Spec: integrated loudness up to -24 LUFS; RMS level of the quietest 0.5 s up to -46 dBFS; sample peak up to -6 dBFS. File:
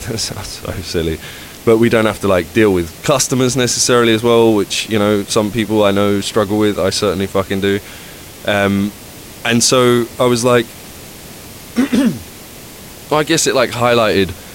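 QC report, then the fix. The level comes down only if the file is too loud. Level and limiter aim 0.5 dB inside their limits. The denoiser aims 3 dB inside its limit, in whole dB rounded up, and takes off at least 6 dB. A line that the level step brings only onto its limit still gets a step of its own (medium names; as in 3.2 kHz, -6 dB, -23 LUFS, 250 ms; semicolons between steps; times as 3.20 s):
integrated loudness -14.5 LUFS: fail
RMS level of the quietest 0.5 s -34 dBFS: fail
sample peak -1.5 dBFS: fail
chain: noise reduction 6 dB, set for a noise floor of -34 dBFS; trim -10 dB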